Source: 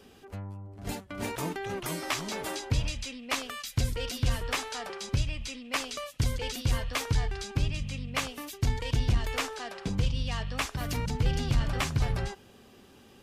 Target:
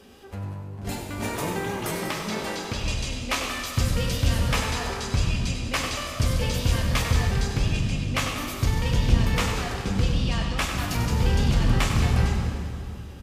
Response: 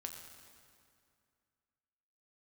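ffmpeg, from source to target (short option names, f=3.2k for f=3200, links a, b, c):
-filter_complex "[0:a]asettb=1/sr,asplit=3[a][b][c];[a]atrim=end=1.914[d];[b]atrim=start=1.91:end=2.84,asetpts=PTS-STARTPTS,afade=t=in:d=0.004:c=qsin,afade=t=out:st=0.926:d=0.004:c=qsin,acrossover=split=400|6300[e][f][g];[e]acompressor=threshold=-35dB:ratio=4[h];[f]acompressor=threshold=-33dB:ratio=4[i];[g]acompressor=threshold=-54dB:ratio=4[j];[h][i][j]amix=inputs=3:normalize=0[k];[c]atrim=start=2.836[l];[d][k]acrossfade=d=0.004:c1=hsin:c2=qsin[m];[m][l]acrossfade=d=0.004:c1=qsin:c2=hsin,asplit=8[n][o][p][q][r][s][t][u];[o]adelay=96,afreqshift=49,volume=-9dB[v];[p]adelay=192,afreqshift=98,volume=-14dB[w];[q]adelay=288,afreqshift=147,volume=-19.1dB[x];[r]adelay=384,afreqshift=196,volume=-24.1dB[y];[s]adelay=480,afreqshift=245,volume=-29.1dB[z];[t]adelay=576,afreqshift=294,volume=-34.2dB[aa];[u]adelay=672,afreqshift=343,volume=-39.2dB[ab];[n][v][w][x][y][z][aa][ab]amix=inputs=8:normalize=0[ac];[1:a]atrim=start_sample=2205,asetrate=37485,aresample=44100[ad];[ac][ad]afir=irnorm=-1:irlink=0,volume=7dB"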